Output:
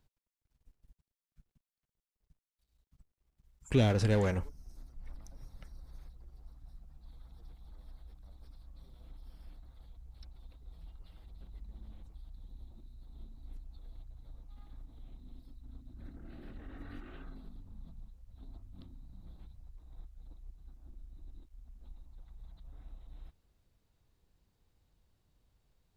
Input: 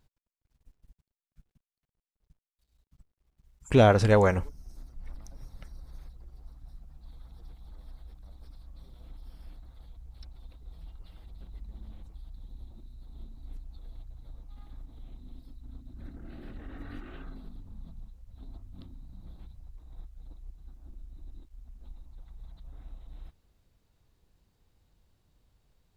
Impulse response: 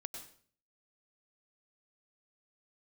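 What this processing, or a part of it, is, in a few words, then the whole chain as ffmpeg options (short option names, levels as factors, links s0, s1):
one-band saturation: -filter_complex "[0:a]acrossover=split=400|2100[s0][s1][s2];[s1]asoftclip=type=tanh:threshold=0.0282[s3];[s0][s3][s2]amix=inputs=3:normalize=0,volume=0.596"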